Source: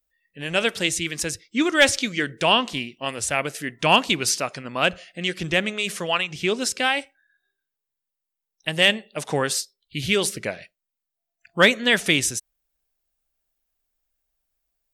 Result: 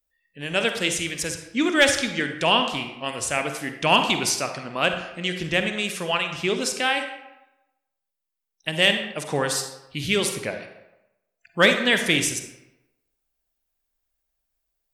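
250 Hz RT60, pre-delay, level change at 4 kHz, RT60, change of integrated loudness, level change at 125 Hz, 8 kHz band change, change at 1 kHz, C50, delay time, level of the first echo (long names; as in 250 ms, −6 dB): 0.90 s, 40 ms, −0.5 dB, 0.95 s, −0.5 dB, −0.5 dB, −1.0 dB, −0.5 dB, 7.0 dB, no echo audible, no echo audible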